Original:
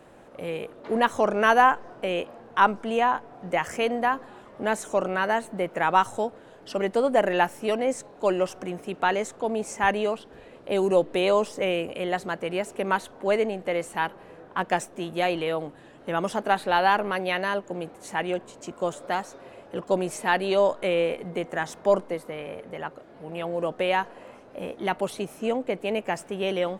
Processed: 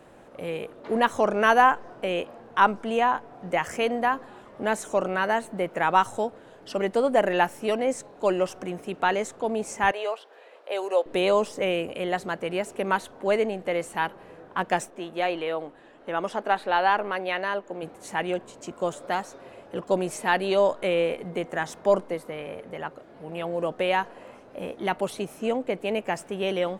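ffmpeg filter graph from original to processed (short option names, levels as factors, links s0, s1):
-filter_complex "[0:a]asettb=1/sr,asplit=3[s0][s1][s2];[s0]atrim=end=9.914[s3];[s1]atrim=start=9.91:end=11.06,asetpts=PTS-STARTPTS,afade=t=in:d=0.004:c=qsin,afade=t=out:st=1.146:d=0.004:c=qsin,highpass=f=490:w=0.5412,highpass=f=490:w=1.3066,equalizer=f=8900:t=o:w=1.2:g=-5.5[s4];[s2]atrim=start=11.056[s5];[s3][s4]acrossfade=d=0.004:c1=hsin:c2=qsin[s6];[s6][s5]acrossfade=d=0.004:c1=qsin:c2=hsin,asettb=1/sr,asplit=3[s7][s8][s9];[s7]atrim=end=14.904[s10];[s8]atrim=start=14.9:end=17.83,asetpts=PTS-STARTPTS,afade=t=in:d=0.004:c=qsin,afade=t=out:st=2.926:d=0.004:c=qsin,lowpass=f=3300:p=1,equalizer=f=110:t=o:w=1.7:g=-13.5[s11];[s9]atrim=start=17.826[s12];[s10][s11]acrossfade=d=0.004:c1=hsin:c2=qsin[s13];[s13][s12]acrossfade=d=0.004:c1=qsin:c2=hsin"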